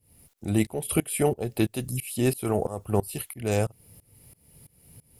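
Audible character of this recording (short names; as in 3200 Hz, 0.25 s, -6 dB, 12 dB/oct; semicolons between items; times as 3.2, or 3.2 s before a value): a quantiser's noise floor 12-bit, dither triangular; tremolo saw up 3 Hz, depth 95%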